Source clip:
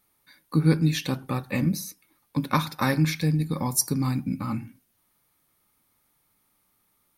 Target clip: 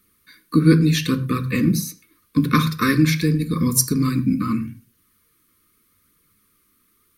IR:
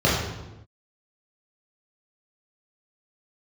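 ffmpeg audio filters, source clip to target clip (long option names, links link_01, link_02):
-filter_complex "[0:a]aphaser=in_gain=1:out_gain=1:delay=3.9:decay=0.29:speed=0.81:type=triangular,asuperstop=centerf=730:order=20:qfactor=1.4,asplit=2[link_01][link_02];[1:a]atrim=start_sample=2205,afade=type=out:start_time=0.22:duration=0.01,atrim=end_sample=10143,asetrate=57330,aresample=44100[link_03];[link_02][link_03]afir=irnorm=-1:irlink=0,volume=-28dB[link_04];[link_01][link_04]amix=inputs=2:normalize=0,volume=6dB"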